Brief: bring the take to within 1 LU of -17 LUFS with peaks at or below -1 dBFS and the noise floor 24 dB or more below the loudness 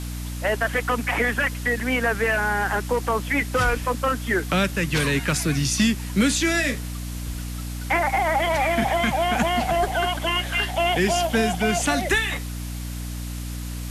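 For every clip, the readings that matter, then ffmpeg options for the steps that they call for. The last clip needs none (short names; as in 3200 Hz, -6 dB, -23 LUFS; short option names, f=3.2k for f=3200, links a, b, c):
hum 60 Hz; harmonics up to 300 Hz; hum level -29 dBFS; noise floor -31 dBFS; noise floor target -47 dBFS; loudness -23.0 LUFS; peak -10.0 dBFS; loudness target -17.0 LUFS
-> -af "bandreject=f=60:t=h:w=4,bandreject=f=120:t=h:w=4,bandreject=f=180:t=h:w=4,bandreject=f=240:t=h:w=4,bandreject=f=300:t=h:w=4"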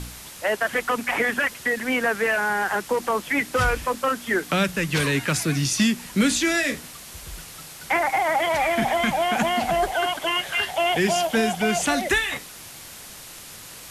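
hum none; noise floor -41 dBFS; noise floor target -47 dBFS
-> -af "afftdn=nr=6:nf=-41"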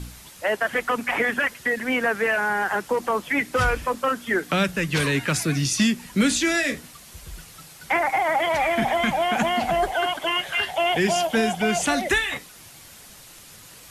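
noise floor -46 dBFS; noise floor target -47 dBFS
-> -af "afftdn=nr=6:nf=-46"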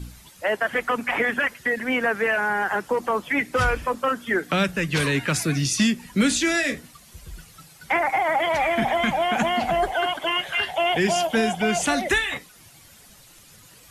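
noise floor -50 dBFS; loudness -22.5 LUFS; peak -10.5 dBFS; loudness target -17.0 LUFS
-> -af "volume=5.5dB"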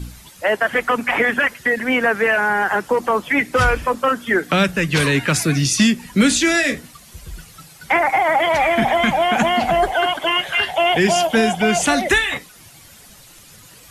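loudness -17.0 LUFS; peak -5.0 dBFS; noise floor -45 dBFS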